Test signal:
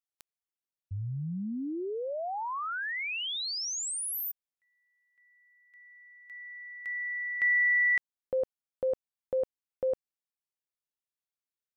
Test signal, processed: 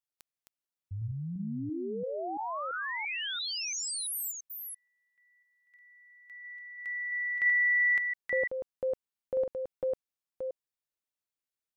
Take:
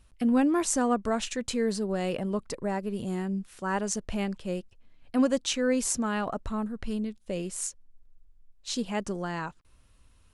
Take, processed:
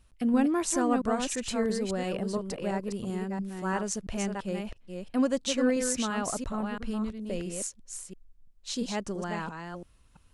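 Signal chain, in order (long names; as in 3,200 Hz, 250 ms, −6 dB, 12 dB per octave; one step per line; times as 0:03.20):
delay that plays each chunk backwards 339 ms, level −5 dB
level −2 dB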